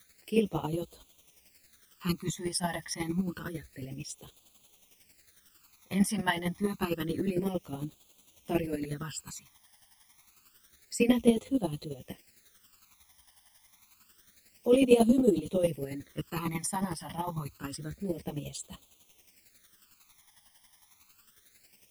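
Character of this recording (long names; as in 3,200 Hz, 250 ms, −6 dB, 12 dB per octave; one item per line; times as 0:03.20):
a quantiser's noise floor 10 bits, dither triangular
phaser sweep stages 12, 0.28 Hz, lowest notch 430–1,800 Hz
chopped level 11 Hz, depth 60%, duty 20%
a shimmering, thickened sound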